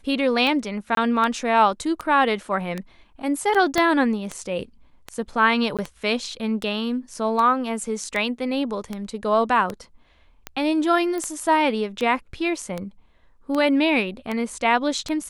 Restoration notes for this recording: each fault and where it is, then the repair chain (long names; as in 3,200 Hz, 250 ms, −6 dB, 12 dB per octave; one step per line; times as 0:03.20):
scratch tick 78 rpm −14 dBFS
0:00.95–0:00.97: drop-out 22 ms
0:03.78: click −7 dBFS
0:05.77–0:05.79: drop-out 17 ms
0:11.18: click −18 dBFS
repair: click removal
repair the gap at 0:00.95, 22 ms
repair the gap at 0:05.77, 17 ms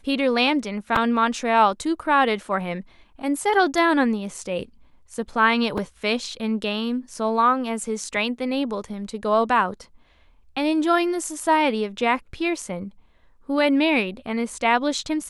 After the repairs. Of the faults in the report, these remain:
0:03.78: click